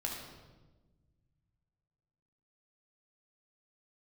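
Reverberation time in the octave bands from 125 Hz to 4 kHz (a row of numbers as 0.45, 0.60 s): 2.9, 2.0, 1.4, 1.1, 0.95, 0.90 s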